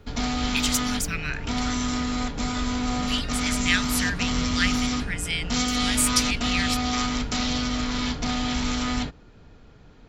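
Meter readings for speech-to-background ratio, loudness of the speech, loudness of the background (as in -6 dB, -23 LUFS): -1.0 dB, -27.5 LUFS, -26.5 LUFS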